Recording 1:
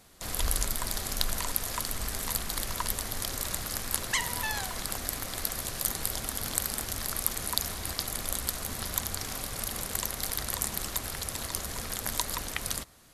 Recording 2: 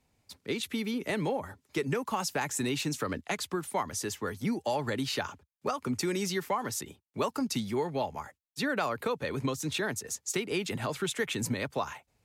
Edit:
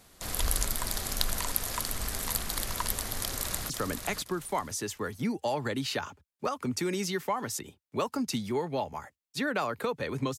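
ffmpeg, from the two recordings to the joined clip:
-filter_complex "[0:a]apad=whole_dur=10.38,atrim=end=10.38,atrim=end=3.702[a];[1:a]atrim=start=2.918:end=9.6[b];[a][b]acrossfade=d=0.004:c1=hsin:c2=hsin,asplit=2[c][d];[d]afade=t=in:st=3.21:d=0.01,afade=t=out:st=3.7:d=0.01,aecho=0:1:520|1040|1560:0.473151|0.118288|0.029572[e];[c][e]amix=inputs=2:normalize=0"

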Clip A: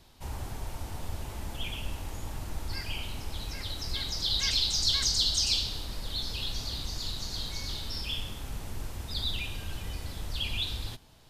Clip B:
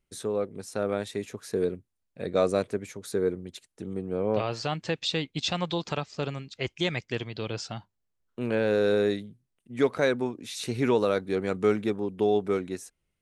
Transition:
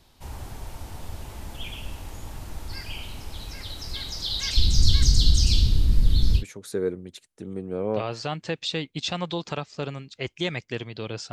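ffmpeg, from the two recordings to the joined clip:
-filter_complex "[0:a]asplit=3[a][b][c];[a]afade=t=out:st=4.56:d=0.02[d];[b]asubboost=boost=11:cutoff=230,afade=t=in:st=4.56:d=0.02,afade=t=out:st=6.44:d=0.02[e];[c]afade=t=in:st=6.44:d=0.02[f];[d][e][f]amix=inputs=3:normalize=0,apad=whole_dur=11.32,atrim=end=11.32,atrim=end=6.44,asetpts=PTS-STARTPTS[g];[1:a]atrim=start=2.76:end=7.72,asetpts=PTS-STARTPTS[h];[g][h]acrossfade=d=0.08:c1=tri:c2=tri"

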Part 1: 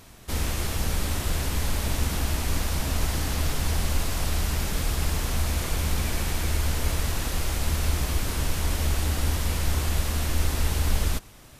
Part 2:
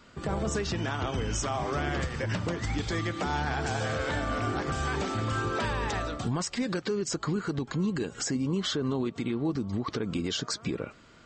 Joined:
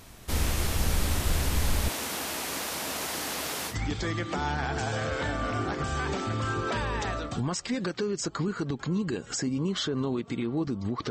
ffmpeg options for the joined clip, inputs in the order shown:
-filter_complex "[0:a]asettb=1/sr,asplit=3[a][b][c];[a]atrim=end=1.894[d];[b]atrim=start=1.89:end=3.76,asetpts=PTS-STARTPTS,afade=t=in:d=0.004:c=qsin,afade=t=out:st=1.866:d=0.004:c=qsin,highpass=330[e];[c]atrim=start=3.756[f];[d][e]acrossfade=d=0.004:c1=hsin:c2=qsin[g];[g][f]acrossfade=d=0.004:c1=qsin:c2=hsin,apad=whole_dur=11.1,atrim=end=11.1,atrim=end=3.76,asetpts=PTS-STARTPTS[h];[1:a]atrim=start=2.54:end=9.98,asetpts=PTS-STARTPTS[i];[h][i]acrossfade=d=0.1:c1=tri:c2=tri"

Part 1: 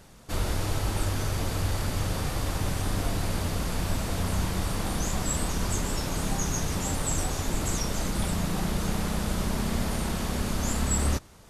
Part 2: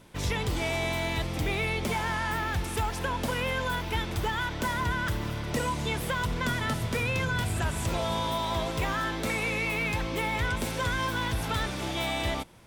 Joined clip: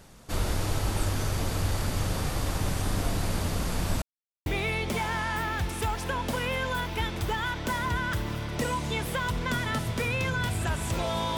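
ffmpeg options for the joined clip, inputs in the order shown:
-filter_complex "[0:a]apad=whole_dur=11.37,atrim=end=11.37,asplit=2[a][b];[a]atrim=end=4.02,asetpts=PTS-STARTPTS,afade=t=out:st=4.016:d=0.004:c=hsin[c];[b]atrim=start=4.02:end=4.46,asetpts=PTS-STARTPTS,volume=0[d];[1:a]atrim=start=1.41:end=8.32,asetpts=PTS-STARTPTS,afade=t=in:d=0.004:c=hsin[e];[c][d][e]concat=n=3:v=0:a=1"

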